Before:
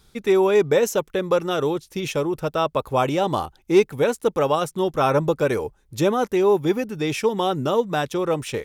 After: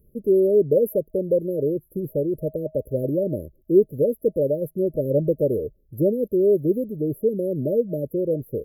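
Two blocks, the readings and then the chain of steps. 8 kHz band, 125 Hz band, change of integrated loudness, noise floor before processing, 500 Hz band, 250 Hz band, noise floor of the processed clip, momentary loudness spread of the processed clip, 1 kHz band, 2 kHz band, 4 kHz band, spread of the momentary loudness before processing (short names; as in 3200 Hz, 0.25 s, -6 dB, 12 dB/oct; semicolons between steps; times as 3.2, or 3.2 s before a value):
under -15 dB, 0.0 dB, -1.0 dB, -61 dBFS, 0.0 dB, 0.0 dB, -61 dBFS, 9 LU, under -35 dB, under -40 dB, under -40 dB, 7 LU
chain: FFT band-reject 630–11000 Hz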